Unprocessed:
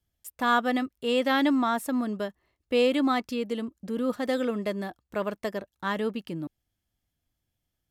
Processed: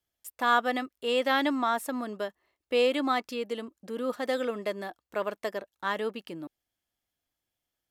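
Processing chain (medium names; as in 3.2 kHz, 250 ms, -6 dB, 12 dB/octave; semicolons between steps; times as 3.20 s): tone controls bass -14 dB, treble -1 dB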